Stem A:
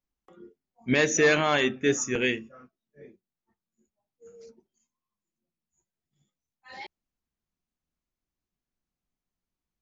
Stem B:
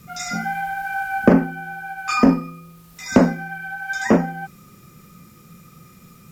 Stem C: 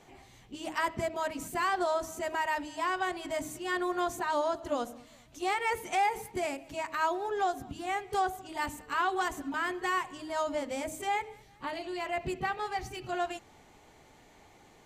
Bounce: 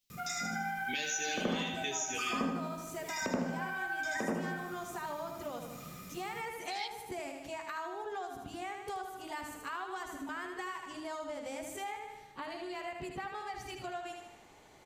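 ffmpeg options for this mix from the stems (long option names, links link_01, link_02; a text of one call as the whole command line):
ffmpeg -i stem1.wav -i stem2.wav -i stem3.wav -filter_complex "[0:a]highshelf=frequency=2100:width_type=q:width=1.5:gain=14,asplit=2[link_01][link_02];[link_02]adelay=11.8,afreqshift=-0.6[link_03];[link_01][link_03]amix=inputs=2:normalize=1,volume=1.5dB,asplit=2[link_04][link_05];[link_05]volume=-17.5dB[link_06];[1:a]adelay=100,volume=-0.5dB,asplit=2[link_07][link_08];[link_08]volume=-6.5dB[link_09];[2:a]acompressor=threshold=-33dB:ratio=2,adelay=750,volume=-1dB,asplit=2[link_10][link_11];[link_11]volume=-6.5dB[link_12];[link_04][link_07]amix=inputs=2:normalize=0,acompressor=threshold=-25dB:ratio=6,volume=0dB[link_13];[link_06][link_09][link_12]amix=inputs=3:normalize=0,aecho=0:1:77|154|231|308|385|462|539:1|0.51|0.26|0.133|0.0677|0.0345|0.0176[link_14];[link_10][link_13][link_14]amix=inputs=3:normalize=0,lowshelf=frequency=190:gain=-5.5,acompressor=threshold=-41dB:ratio=2" out.wav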